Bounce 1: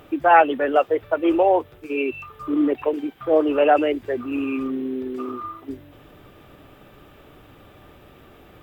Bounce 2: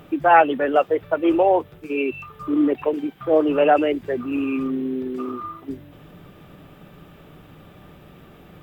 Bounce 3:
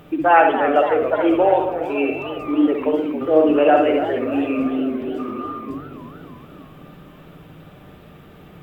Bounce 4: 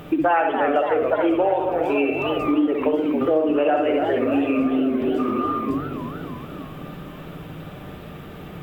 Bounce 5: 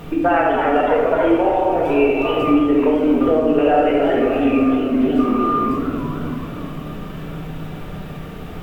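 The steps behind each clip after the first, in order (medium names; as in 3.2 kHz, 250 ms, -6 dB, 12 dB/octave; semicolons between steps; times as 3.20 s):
peaking EQ 170 Hz +12.5 dB 0.48 oct
reverberation, pre-delay 57 ms, DRR 3.5 dB; modulated delay 283 ms, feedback 63%, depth 208 cents, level -10.5 dB
compression 5:1, threshold -24 dBFS, peak gain reduction 14.5 dB; trim +6.5 dB
simulated room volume 630 m³, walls mixed, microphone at 1.7 m; added noise brown -35 dBFS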